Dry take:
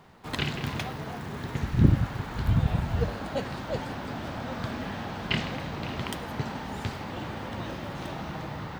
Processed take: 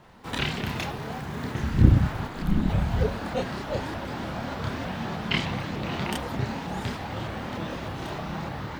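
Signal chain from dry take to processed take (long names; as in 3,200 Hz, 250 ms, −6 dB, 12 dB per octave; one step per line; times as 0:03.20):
multi-voice chorus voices 4, 0.61 Hz, delay 29 ms, depth 3 ms
0:02.27–0:02.70: ring modulation 110 Hz
pitch modulation by a square or saw wave saw up 3.3 Hz, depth 160 cents
level +5.5 dB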